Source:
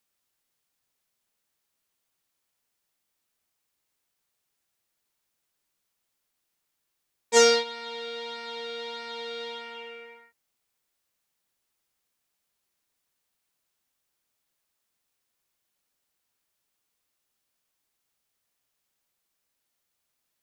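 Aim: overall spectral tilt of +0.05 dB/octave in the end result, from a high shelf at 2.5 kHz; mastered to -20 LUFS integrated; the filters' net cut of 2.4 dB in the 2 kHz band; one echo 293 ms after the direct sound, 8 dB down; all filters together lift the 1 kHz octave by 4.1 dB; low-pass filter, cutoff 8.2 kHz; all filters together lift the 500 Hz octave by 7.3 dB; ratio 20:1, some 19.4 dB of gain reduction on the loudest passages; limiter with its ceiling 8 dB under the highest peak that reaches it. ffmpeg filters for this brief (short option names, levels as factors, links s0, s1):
-af "lowpass=8200,equalizer=f=500:t=o:g=7,equalizer=f=1000:t=o:g=4.5,equalizer=f=2000:t=o:g=-8,highshelf=f=2500:g=6,acompressor=threshold=0.0447:ratio=20,alimiter=level_in=1.33:limit=0.0631:level=0:latency=1,volume=0.75,aecho=1:1:293:0.398,volume=5.96"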